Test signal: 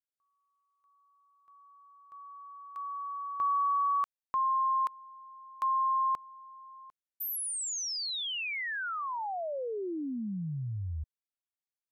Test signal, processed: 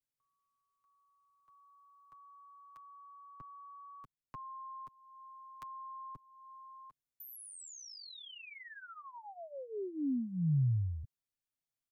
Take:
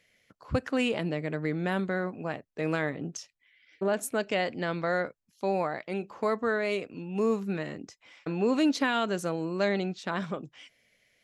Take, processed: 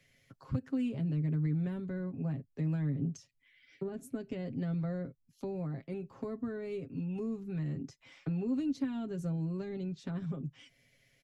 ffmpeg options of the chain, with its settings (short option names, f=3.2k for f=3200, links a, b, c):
-filter_complex "[0:a]bass=f=250:g=11,treble=f=4k:g=2,acrossover=split=140|370[a][b][c];[a]acompressor=threshold=-35dB:ratio=4[d];[b]acompressor=threshold=-33dB:ratio=4[e];[c]acompressor=threshold=-51dB:ratio=4[f];[d][e][f]amix=inputs=3:normalize=0,aecho=1:1:7.4:0.7,volume=-4dB"